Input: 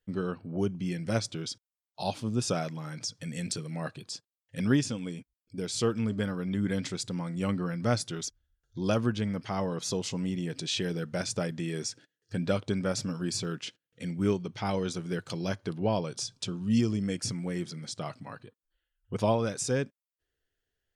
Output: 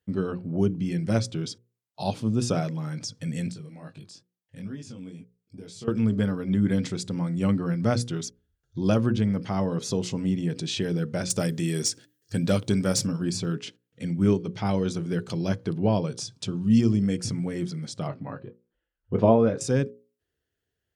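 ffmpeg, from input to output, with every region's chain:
ffmpeg -i in.wav -filter_complex "[0:a]asettb=1/sr,asplit=3[link_01][link_02][link_03];[link_01]atrim=end=3.504[link_04];[link_02]atrim=start=3.5:end=5.88,asetpts=PTS-STARTPTS,afade=type=in:duration=0.004:curve=qsin,afade=type=out:start_time=2.376:duration=0.004:curve=qsin,acompressor=threshold=-43dB:ratio=2.5:attack=3.2:release=140:knee=1:detection=peak,flanger=delay=18.5:depth=3.7:speed=2.3[link_05];[link_03]atrim=start=5.876[link_06];[link_04][link_05]acrossfade=duration=0.004:curve1=hsin:curve2=qsin[link_07];[link_07][link_06]acrossfade=duration=0.004:curve1=qsin:curve2=hsin,asettb=1/sr,asplit=3[link_08][link_09][link_10];[link_08]atrim=end=11.304[link_11];[link_09]atrim=start=11.3:end=13.07,asetpts=PTS-STARTPTS,afade=type=in:duration=0.004:curve=qsin,afade=type=out:start_time=1.766:duration=0.004:curve=qsin,aemphasis=mode=production:type=75kf,asoftclip=type=hard:threshold=-18.5dB[link_12];[link_10]atrim=start=13.066[link_13];[link_11][link_12]acrossfade=duration=0.004:curve1=hsin:curve2=qsin[link_14];[link_14][link_13]acrossfade=duration=0.004:curve1=qsin:curve2=hsin,asettb=1/sr,asplit=3[link_15][link_16][link_17];[link_15]atrim=end=18.074[link_18];[link_16]atrim=start=18.07:end=19.61,asetpts=PTS-STARTPTS,afade=type=in:duration=0.004:curve=qsin,afade=type=out:start_time=1.536:duration=0.004:curve=qsin,lowpass=2400,equalizer=frequency=470:width_type=o:width=1.7:gain=5,asplit=2[link_19][link_20];[link_20]adelay=22,volume=-10dB[link_21];[link_19][link_21]amix=inputs=2:normalize=0,atrim=end_sample=67914[link_22];[link_17]atrim=start=19.606[link_23];[link_18][link_22]acrossfade=duration=0.004:curve1=hsin:curve2=qsin[link_24];[link_24][link_23]acrossfade=duration=0.004:curve1=qsin:curve2=hsin,highpass=81,lowshelf=frequency=410:gain=9.5,bandreject=frequency=60:width_type=h:width=6,bandreject=frequency=120:width_type=h:width=6,bandreject=frequency=180:width_type=h:width=6,bandreject=frequency=240:width_type=h:width=6,bandreject=frequency=300:width_type=h:width=6,bandreject=frequency=360:width_type=h:width=6,bandreject=frequency=420:width_type=h:width=6,bandreject=frequency=480:width_type=h:width=6,bandreject=frequency=540:width_type=h:width=6" out.wav

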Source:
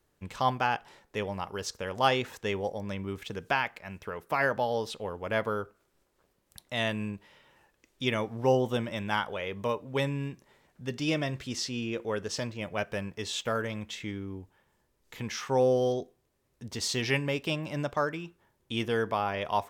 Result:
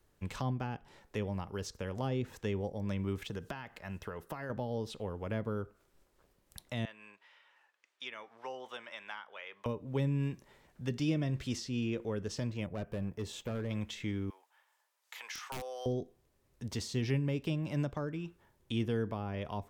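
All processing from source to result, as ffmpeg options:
ffmpeg -i in.wav -filter_complex "[0:a]asettb=1/sr,asplit=3[link_01][link_02][link_03];[link_01]atrim=end=3.274[link_04];[link_02]atrim=start=3.27:end=4.5,asetpts=PTS-STARTPTS,afade=type=in:duration=0.004:curve=qsin,afade=type=out:start_time=1.226:duration=0.004:curve=qsin,bandreject=frequency=2300:width=7.4,acompressor=threshold=-37dB:ratio=2:attack=3.2:release=140:knee=1:detection=peak[link_05];[link_03]atrim=start=4.496[link_06];[link_04][link_05]acrossfade=duration=0.004:curve1=hsin:curve2=qsin[link_07];[link_07][link_06]acrossfade=duration=0.004:curve1=qsin:curve2=hsin,asettb=1/sr,asplit=3[link_08][link_09][link_10];[link_08]atrim=end=6.854[link_11];[link_09]atrim=start=6.85:end=9.66,asetpts=PTS-STARTPTS,afade=type=in:duration=0.004:curve=qsin,afade=type=out:start_time=2.806:duration=0.004:curve=qsin,highpass=1200,aemphasis=mode=reproduction:type=75fm[link_12];[link_10]atrim=start=9.656[link_13];[link_11][link_12]acrossfade=duration=0.004:curve1=hsin:curve2=qsin[link_14];[link_14][link_13]acrossfade=duration=0.004:curve1=qsin:curve2=hsin,asettb=1/sr,asplit=3[link_15][link_16][link_17];[link_15]atrim=end=12.664[link_18];[link_16]atrim=start=12.66:end=13.71,asetpts=PTS-STARTPTS,afade=type=in:duration=0.004:curve=qsin,afade=type=out:start_time=1.046:duration=0.004:curve=qsin,equalizer=frequency=4000:width=0.33:gain=-11.5,volume=31.5dB,asoftclip=hard,volume=-31.5dB[link_19];[link_17]atrim=start=13.706[link_20];[link_18][link_19]acrossfade=duration=0.004:curve1=hsin:curve2=qsin[link_21];[link_21][link_20]acrossfade=duration=0.004:curve1=qsin:curve2=hsin,asettb=1/sr,asplit=3[link_22][link_23][link_24];[link_22]atrim=end=14.304[link_25];[link_23]atrim=start=14.3:end=15.86,asetpts=PTS-STARTPTS,afade=type=in:duration=0.004:curve=qsin,afade=type=out:start_time=1.556:duration=0.004:curve=qsin,highpass=frequency=740:width=0.5412,highpass=frequency=740:width=1.3066,aeval=exprs='(mod(20*val(0)+1,2)-1)/20':channel_layout=same[link_26];[link_24]atrim=start=15.856[link_27];[link_25][link_26]acrossfade=duration=0.004:curve1=hsin:curve2=qsin[link_28];[link_28][link_27]acrossfade=duration=0.004:curve1=qsin:curve2=hsin,acrossover=split=370[link_29][link_30];[link_30]acompressor=threshold=-41dB:ratio=10[link_31];[link_29][link_31]amix=inputs=2:normalize=0,lowshelf=frequency=76:gain=7.5" out.wav

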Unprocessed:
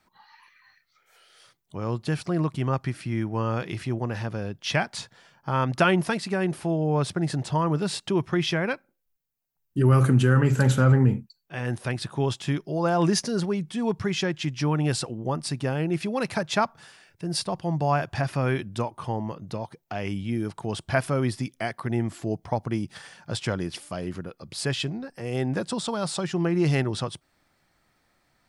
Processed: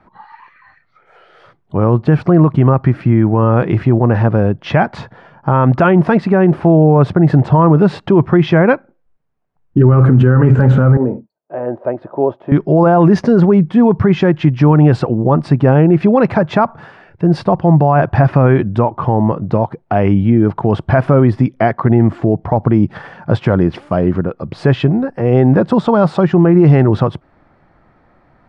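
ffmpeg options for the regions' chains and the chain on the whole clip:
ffmpeg -i in.wav -filter_complex "[0:a]asettb=1/sr,asplit=3[link_01][link_02][link_03];[link_01]atrim=end=10.974[link_04];[link_02]atrim=start=10.97:end=12.52,asetpts=PTS-STARTPTS,afade=type=in:duration=0.004:curve=qsin,afade=type=out:start_time=1.546:duration=0.004:curve=qsin,bandpass=frequency=560:width_type=q:width=2.4,aecho=1:1:3.2:0.32,atrim=end_sample=68355[link_05];[link_03]atrim=start=12.516[link_06];[link_04][link_05]acrossfade=duration=0.004:curve1=hsin:curve2=qsin[link_07];[link_07][link_06]acrossfade=duration=0.004:curve1=qsin:curve2=hsin,lowpass=1200,alimiter=level_in=20dB:limit=-1dB:release=50:level=0:latency=1,volume=-1dB" out.wav

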